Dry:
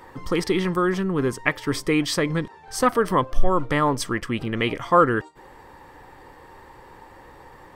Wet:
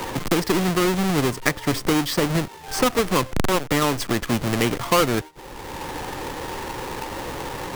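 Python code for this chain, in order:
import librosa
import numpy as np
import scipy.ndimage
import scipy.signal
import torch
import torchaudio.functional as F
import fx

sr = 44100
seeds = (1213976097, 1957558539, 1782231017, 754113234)

y = fx.halfwave_hold(x, sr)
y = fx.band_squash(y, sr, depth_pct=70)
y = y * librosa.db_to_amplitude(-3.0)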